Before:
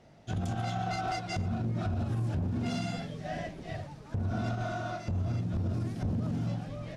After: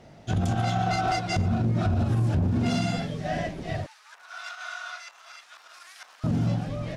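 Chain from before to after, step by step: 3.86–6.24 s: high-pass 1.2 kHz 24 dB/octave; trim +7.5 dB

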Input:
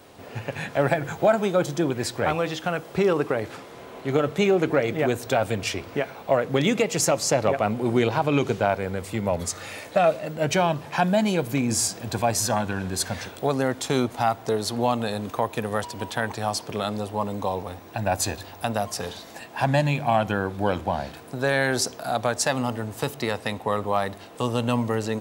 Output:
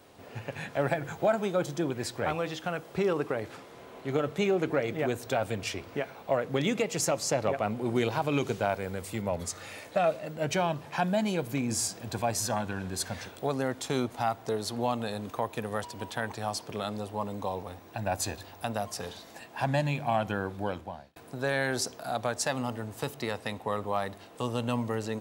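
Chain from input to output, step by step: 7.95–9.22 s: treble shelf 5.2 kHz +7 dB; 20.52–21.16 s: fade out; trim -6.5 dB

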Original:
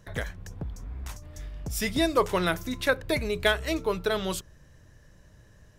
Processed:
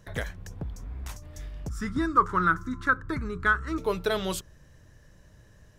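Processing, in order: 1.69–3.78 s: FFT filter 310 Hz 0 dB, 660 Hz -19 dB, 1.3 kHz +12 dB, 2.5 kHz -18 dB, 7.5 kHz -11 dB, 13 kHz -24 dB

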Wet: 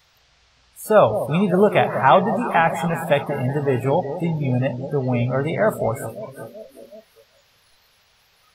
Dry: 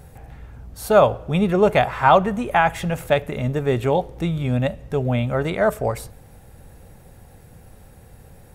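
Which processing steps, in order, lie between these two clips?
echo whose repeats swap between lows and highs 187 ms, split 850 Hz, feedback 76%, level -10 dB; band noise 440–5400 Hz -35 dBFS; spectral noise reduction 25 dB

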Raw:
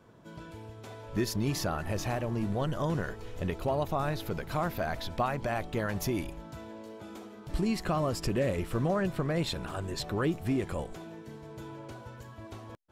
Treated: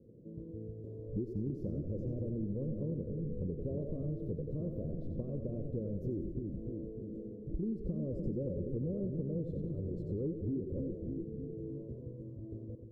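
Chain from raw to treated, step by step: elliptic low-pass 510 Hz, stop band 40 dB; two-band feedback delay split 360 Hz, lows 301 ms, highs 90 ms, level -6 dB; compression 4:1, threshold -35 dBFS, peak gain reduction 9.5 dB; trim +1 dB

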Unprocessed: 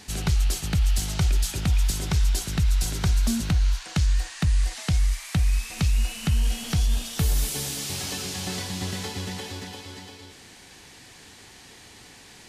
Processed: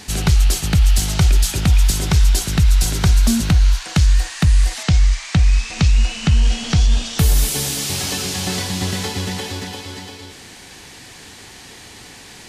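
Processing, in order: 4.83–7.19 s: low-pass 7.2 kHz 24 dB/octave; trim +8.5 dB

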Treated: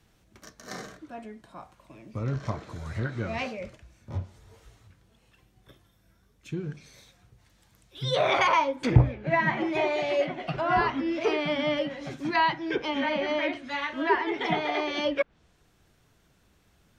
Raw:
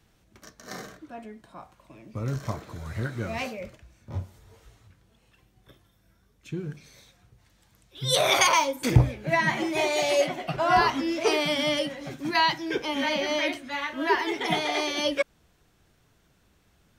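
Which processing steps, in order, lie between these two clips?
low-pass that closes with the level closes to 2.3 kHz, closed at -23 dBFS; 9.95–11.45 s: dynamic bell 840 Hz, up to -4 dB, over -33 dBFS, Q 0.86

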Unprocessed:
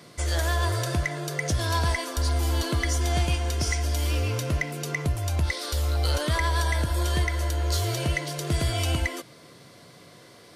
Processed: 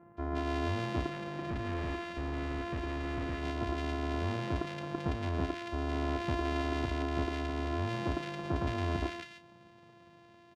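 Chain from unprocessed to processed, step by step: sorted samples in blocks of 128 samples; high-pass 64 Hz; doubling 33 ms -9.5 dB; bands offset in time lows, highs 170 ms, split 1.6 kHz; 1.10–3.43 s: hard clipper -26 dBFS, distortion -13 dB; low-pass 3.2 kHz 12 dB/octave; trim -6.5 dB

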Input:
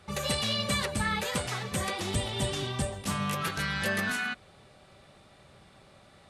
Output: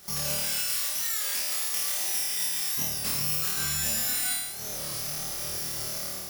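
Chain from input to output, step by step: level rider gain up to 13 dB; flange 0.43 Hz, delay 5.3 ms, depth 4.7 ms, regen -53%; compression 8:1, threshold -41 dBFS, peak gain reduction 23 dB; careless resampling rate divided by 8×, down none, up zero stuff; 0.39–2.78 s: high-pass 1.2 kHz 6 dB/octave; flutter echo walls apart 4.6 m, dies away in 1.1 s; warped record 33 1/3 rpm, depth 100 cents

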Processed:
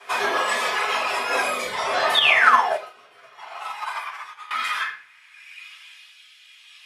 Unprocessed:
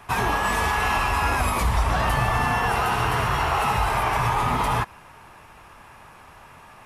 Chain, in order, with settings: frequency weighting D; reverb removal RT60 1.7 s; bass shelf 390 Hz +5 dB; band-stop 2.7 kHz, Q 14; peak limiter -17 dBFS, peak gain reduction 7 dB; high-pass sweep 530 Hz -> 3.1 kHz, 2.82–5.95 s; 2.14–2.73 s: painted sound fall 570–3800 Hz -17 dBFS; rotary cabinet horn 7.5 Hz, later 0.6 Hz, at 0.72 s; simulated room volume 52 m³, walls mixed, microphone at 3.3 m; 2.19–4.51 s: upward expansion 2.5:1, over -17 dBFS; trim -9.5 dB

